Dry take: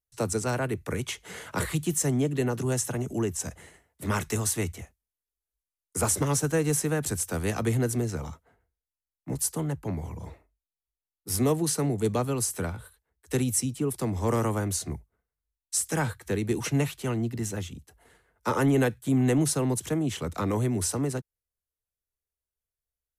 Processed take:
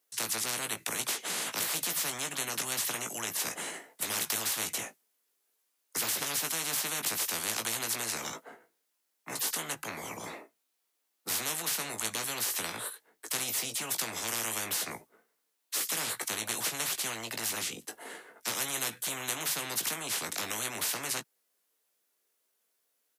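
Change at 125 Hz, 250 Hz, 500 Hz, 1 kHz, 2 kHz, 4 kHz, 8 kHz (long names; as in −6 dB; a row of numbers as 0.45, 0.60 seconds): −22.0, −17.5, −13.5, −4.0, +1.5, +6.5, 0.0 decibels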